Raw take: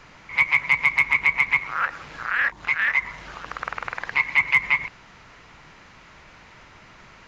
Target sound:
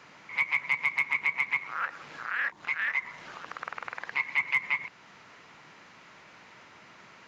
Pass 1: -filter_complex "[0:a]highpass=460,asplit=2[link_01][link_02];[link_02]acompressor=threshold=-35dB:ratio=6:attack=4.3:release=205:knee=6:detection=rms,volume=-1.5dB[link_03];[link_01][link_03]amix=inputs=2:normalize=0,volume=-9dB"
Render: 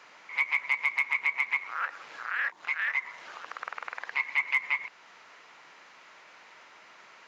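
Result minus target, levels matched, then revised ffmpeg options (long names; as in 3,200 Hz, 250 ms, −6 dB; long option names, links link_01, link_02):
125 Hz band −15.0 dB
-filter_complex "[0:a]highpass=170,asplit=2[link_01][link_02];[link_02]acompressor=threshold=-35dB:ratio=6:attack=4.3:release=205:knee=6:detection=rms,volume=-1.5dB[link_03];[link_01][link_03]amix=inputs=2:normalize=0,volume=-9dB"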